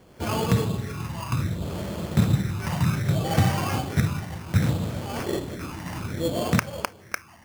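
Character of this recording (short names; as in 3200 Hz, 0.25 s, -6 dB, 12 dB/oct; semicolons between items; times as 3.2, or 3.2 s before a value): phasing stages 12, 0.64 Hz, lowest notch 460–4400 Hz; aliases and images of a low sample rate 3800 Hz, jitter 0%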